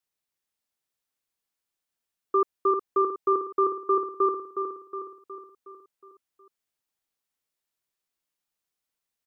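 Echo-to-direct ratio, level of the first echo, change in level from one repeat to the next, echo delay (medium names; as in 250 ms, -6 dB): -5.5 dB, -7.0 dB, -5.5 dB, 365 ms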